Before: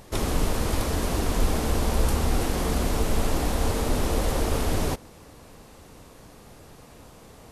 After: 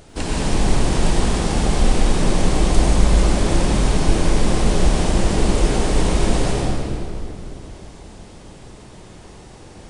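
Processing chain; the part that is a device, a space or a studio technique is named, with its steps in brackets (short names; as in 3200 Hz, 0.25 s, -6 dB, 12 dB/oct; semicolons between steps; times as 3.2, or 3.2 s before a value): slowed and reverbed (varispeed -24%; reverb RT60 2.7 s, pre-delay 80 ms, DRR -3 dB); gain +2 dB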